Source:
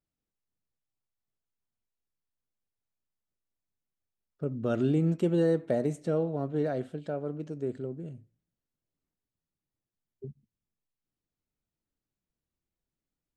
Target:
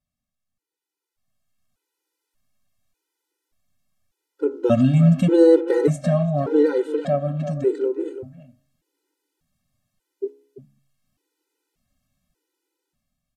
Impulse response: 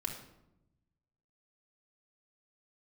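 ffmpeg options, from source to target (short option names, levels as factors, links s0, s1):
-filter_complex "[0:a]aresample=32000,aresample=44100,asplit=2[s0][s1];[s1]acompressor=threshold=0.0126:ratio=6,volume=1[s2];[s0][s2]amix=inputs=2:normalize=0,bandreject=f=69.09:t=h:w=4,bandreject=f=138.18:t=h:w=4,bandreject=f=207.27:t=h:w=4,bandreject=f=276.36:t=h:w=4,bandreject=f=345.45:t=h:w=4,bandreject=f=414.54:t=h:w=4,bandreject=f=483.63:t=h:w=4,bandreject=f=552.72:t=h:w=4,bandreject=f=621.81:t=h:w=4,bandreject=f=690.9:t=h:w=4,bandreject=f=759.99:t=h:w=4,bandreject=f=829.08:t=h:w=4,bandreject=f=898.17:t=h:w=4,bandreject=f=967.26:t=h:w=4,bandreject=f=1036.35:t=h:w=4,bandreject=f=1105.44:t=h:w=4,bandreject=f=1174.53:t=h:w=4,bandreject=f=1243.62:t=h:w=4,bandreject=f=1312.71:t=h:w=4,bandreject=f=1381.8:t=h:w=4,bandreject=f=1450.89:t=h:w=4,bandreject=f=1519.98:t=h:w=4,bandreject=f=1589.07:t=h:w=4,bandreject=f=1658.16:t=h:w=4,bandreject=f=1727.25:t=h:w=4,asplit=2[s3][s4];[s4]adelay=340,highpass=300,lowpass=3400,asoftclip=type=hard:threshold=0.0668,volume=0.282[s5];[s3][s5]amix=inputs=2:normalize=0,dynaudnorm=f=530:g=5:m=3.98,afftfilt=real='re*gt(sin(2*PI*0.85*pts/sr)*(1-2*mod(floor(b*sr/1024/260),2)),0)':imag='im*gt(sin(2*PI*0.85*pts/sr)*(1-2*mod(floor(b*sr/1024/260),2)),0)':win_size=1024:overlap=0.75,volume=1.12"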